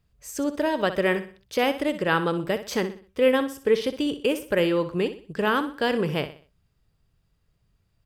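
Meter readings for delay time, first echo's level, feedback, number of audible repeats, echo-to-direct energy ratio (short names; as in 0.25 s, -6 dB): 62 ms, -12.0 dB, 37%, 3, -11.5 dB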